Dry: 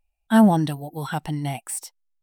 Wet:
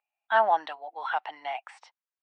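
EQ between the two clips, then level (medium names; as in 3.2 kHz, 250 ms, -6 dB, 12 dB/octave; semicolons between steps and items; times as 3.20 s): high-pass 720 Hz 24 dB/octave; low-pass 2.6 kHz 12 dB/octave; distance through air 130 m; +3.5 dB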